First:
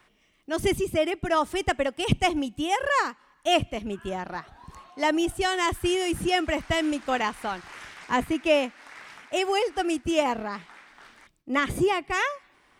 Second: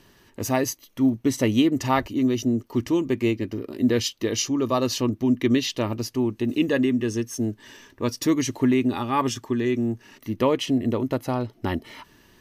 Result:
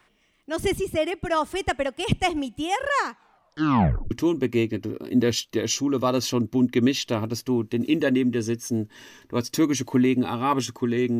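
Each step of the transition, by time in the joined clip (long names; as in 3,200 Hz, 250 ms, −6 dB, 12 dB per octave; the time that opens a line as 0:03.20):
first
0:03.08: tape stop 1.03 s
0:04.11: continue with second from 0:02.79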